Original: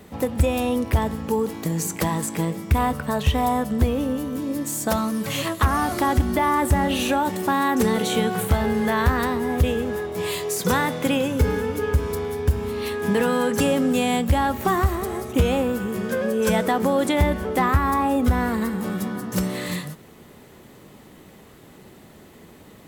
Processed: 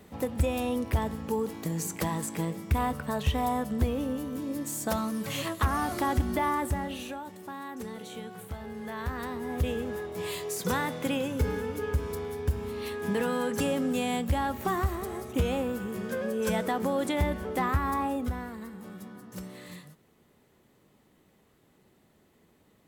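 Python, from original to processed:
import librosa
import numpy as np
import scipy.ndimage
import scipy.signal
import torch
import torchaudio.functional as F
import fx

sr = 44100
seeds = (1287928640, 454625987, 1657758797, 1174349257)

y = fx.gain(x, sr, db=fx.line((6.47, -7.0), (7.27, -19.0), (8.6, -19.0), (9.72, -8.0), (18.03, -8.0), (18.53, -17.0)))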